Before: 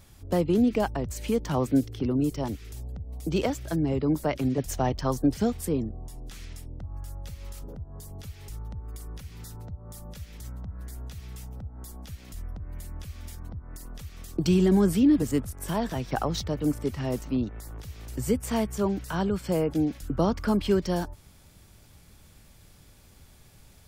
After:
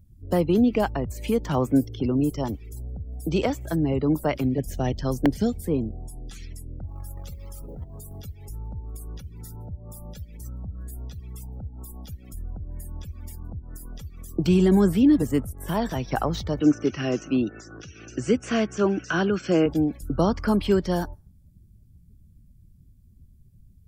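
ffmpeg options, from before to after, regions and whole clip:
-filter_complex "[0:a]asettb=1/sr,asplit=3[s0][s1][s2];[s0]atrim=end=4.444[s3];[s1]atrim=start=4.44:end=5.64,asetpts=PTS-STARTPTS,afade=t=in:d=0.004:c=qsin,afade=t=out:st=1.196:d=0.004:c=qsin,equalizer=f=1000:w=1.3:g=-10,aeval=exprs='val(0)+0.00562*(sin(2*PI*50*n/s)+sin(2*PI*2*50*n/s)/2+sin(2*PI*3*50*n/s)/3+sin(2*PI*4*50*n/s)/4+sin(2*PI*5*50*n/s)/5)':c=same,aeval=exprs='(mod(5.31*val(0)+1,2)-1)/5.31':c=same[s4];[s2]atrim=start=5.636[s5];[s3][s4]acrossfade=d=0.004:c1=hsin:c2=qsin[s6];[s6][s5]acrossfade=d=0.004:c1=qsin:c2=hsin,asettb=1/sr,asplit=3[s7][s8][s9];[s7]atrim=end=6.884[s10];[s8]atrim=start=6.88:end=8.19,asetpts=PTS-STARTPTS,afade=t=in:d=0.004:c=qsin,afade=t=out:st=1.306:d=0.004:c=qsin,bandreject=f=50:t=h:w=6,bandreject=f=100:t=h:w=6,bandreject=f=150:t=h:w=6,bandreject=f=200:t=h:w=6,bandreject=f=250:t=h:w=6,bandreject=f=300:t=h:w=6,acrusher=bits=3:mode=log:mix=0:aa=0.000001[s11];[s9]atrim=start=8.186[s12];[s10][s11]acrossfade=d=0.004:c1=hsin:c2=qsin[s13];[s13][s12]acrossfade=d=0.004:c1=qsin:c2=hsin,asettb=1/sr,asplit=3[s14][s15][s16];[s14]atrim=end=16.604[s17];[s15]atrim=start=16.6:end=19.66,asetpts=PTS-STARTPTS,afade=t=in:d=0.004:c=qsin,afade=t=out:st=3.056:d=0.004:c=qsin,asuperstop=centerf=910:order=4:qfactor=7.4,highpass=130,equalizer=f=330:t=q:w=4:g=9,equalizer=f=1500:t=q:w=4:g=9,equalizer=f=2700:t=q:w=4:g=8,equalizer=f=6000:t=q:w=4:g=7,lowpass=f=7100:w=0.5412,lowpass=f=7100:w=1.3066[s18];[s16]atrim=start=19.656[s19];[s17][s18]acrossfade=d=0.004:c1=hsin:c2=qsin[s20];[s20][s19]acrossfade=d=0.004:c1=qsin:c2=hsin,afftdn=nr=33:nf=-49,aemphasis=mode=production:type=50fm,acrossover=split=3200[s21][s22];[s22]acompressor=threshold=0.00562:ratio=4:attack=1:release=60[s23];[s21][s23]amix=inputs=2:normalize=0,volume=1.41"

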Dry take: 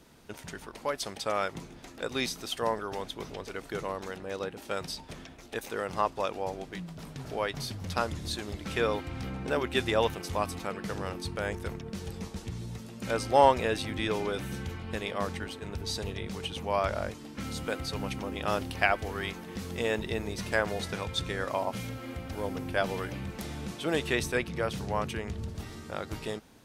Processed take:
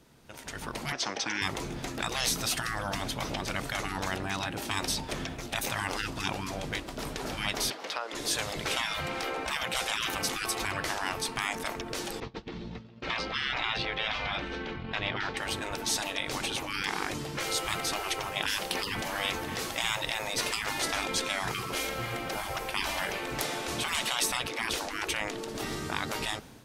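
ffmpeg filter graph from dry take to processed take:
-filter_complex "[0:a]asettb=1/sr,asplit=3[s0][s1][s2];[s0]atrim=end=0.924[s3];[s1]atrim=start=0.92:end=1.42,asetpts=PTS-STARTPTS,afade=t=in:d=0.004:c=qsin,afade=t=out:st=0.496:d=0.004:c=qsin,lowpass=f=5800:t=q:w=6.5,acrossover=split=290 2800:gain=0.126 1 0.178[s4][s5][s6];[s4][s5][s6]amix=inputs=3:normalize=0[s7];[s2]atrim=start=1.416[s8];[s3][s7]acrossfade=d=0.004:c1=hsin:c2=qsin[s9];[s9][s8]acrossfade=d=0.004:c1=qsin:c2=hsin,asettb=1/sr,asplit=3[s10][s11][s12];[s10]atrim=end=7.704[s13];[s11]atrim=start=7.7:end=8.15,asetpts=PTS-STARTPTS,afade=t=in:d=0.004:c=qsin,afade=t=out:st=0.446:d=0.004:c=qsin,highpass=f=280:w=0.5412,highpass=f=280:w=1.3066,acrossover=split=410 5200:gain=0.141 1 0.2[s14][s15][s16];[s14][s15][s16]amix=inputs=3:normalize=0,acompressor=threshold=0.00891:ratio=6:attack=3.2:release=140:knee=1:detection=peak[s17];[s12]atrim=start=8.146[s18];[s13][s17]acrossfade=d=0.004:c1=hsin:c2=qsin[s19];[s19][s18]acrossfade=d=0.004:c1=qsin:c2=hsin,asettb=1/sr,asplit=3[s20][s21][s22];[s20]atrim=end=12.204[s23];[s21]atrim=start=12.2:end=15.37,asetpts=PTS-STARTPTS,afade=t=in:d=0.004:c=qsin,afade=t=out:st=3.166:d=0.004:c=qsin,lowpass=f=4200:w=0.5412,lowpass=f=4200:w=1.3066,agate=range=0.0224:threshold=0.0224:ratio=3:release=100:detection=peak[s24];[s22]atrim=start=15.366[s25];[s23][s24]acrossfade=d=0.004:c1=hsin:c2=qsin[s26];[s26][s25]acrossfade=d=0.004:c1=qsin:c2=hsin,afftfilt=real='re*lt(hypot(re,im),0.0398)':imag='im*lt(hypot(re,im),0.0398)':win_size=1024:overlap=0.75,dynaudnorm=f=240:g=5:m=5.01,equalizer=f=130:t=o:w=0.23:g=6,volume=0.708"

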